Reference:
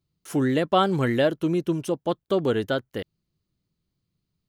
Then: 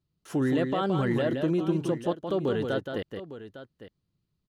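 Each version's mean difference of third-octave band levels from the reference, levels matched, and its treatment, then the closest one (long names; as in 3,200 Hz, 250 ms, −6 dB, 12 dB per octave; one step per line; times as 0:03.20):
4.5 dB: high-shelf EQ 7,200 Hz −12 dB
notch filter 2,200 Hz, Q 13
brickwall limiter −17.5 dBFS, peak gain reduction 10 dB
multi-tap delay 171/855 ms −6/−14 dB
level −1.5 dB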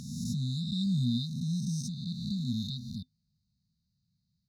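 20.0 dB: peak hold with a rise ahead of every peak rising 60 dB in 1.55 s
high-pass filter 44 Hz
brick-wall band-stop 250–3,600 Hz
high shelf with overshoot 7,500 Hz −10.5 dB, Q 1.5
level −2.5 dB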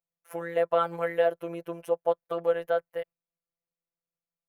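9.0 dB: phases set to zero 169 Hz
low shelf with overshoot 390 Hz −11.5 dB, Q 3
noise gate −43 dBFS, range −7 dB
flat-topped bell 5,200 Hz −12.5 dB
level −2.5 dB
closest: first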